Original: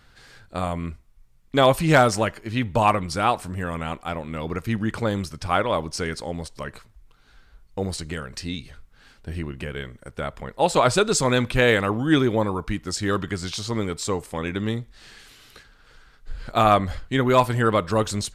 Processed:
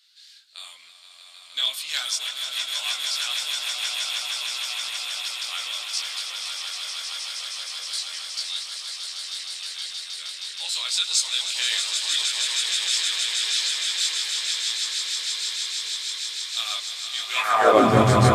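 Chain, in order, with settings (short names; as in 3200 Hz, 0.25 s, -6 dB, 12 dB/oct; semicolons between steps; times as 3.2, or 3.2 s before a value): swelling echo 0.157 s, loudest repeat 8, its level -7 dB; high-pass sweep 3800 Hz -> 79 Hz, 17.27–18.07; chorus voices 6, 0.21 Hz, delay 22 ms, depth 4.4 ms; gain +2.5 dB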